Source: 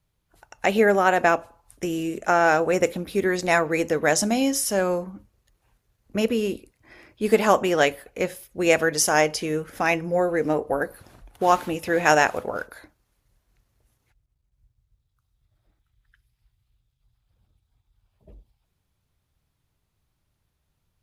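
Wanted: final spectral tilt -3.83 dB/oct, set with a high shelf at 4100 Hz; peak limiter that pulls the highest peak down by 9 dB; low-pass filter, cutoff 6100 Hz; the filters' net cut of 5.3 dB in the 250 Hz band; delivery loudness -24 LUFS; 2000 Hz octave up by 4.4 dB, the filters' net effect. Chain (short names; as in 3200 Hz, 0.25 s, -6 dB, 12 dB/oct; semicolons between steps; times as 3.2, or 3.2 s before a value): LPF 6100 Hz; bell 250 Hz -8 dB; bell 2000 Hz +7 dB; high shelf 4100 Hz -5.5 dB; gain +0.5 dB; limiter -9 dBFS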